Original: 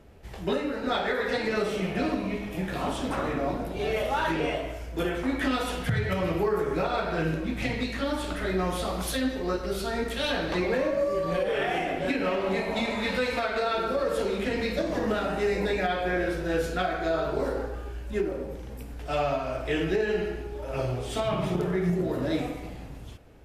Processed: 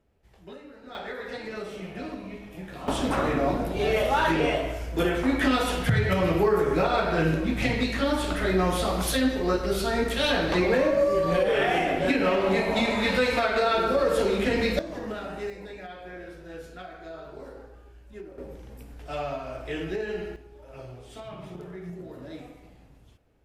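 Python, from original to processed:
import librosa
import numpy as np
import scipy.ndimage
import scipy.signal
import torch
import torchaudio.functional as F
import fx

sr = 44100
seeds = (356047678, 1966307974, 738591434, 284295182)

y = fx.gain(x, sr, db=fx.steps((0.0, -16.5), (0.95, -8.5), (2.88, 4.0), (14.79, -7.0), (15.5, -14.0), (18.38, -5.0), (20.36, -13.0)))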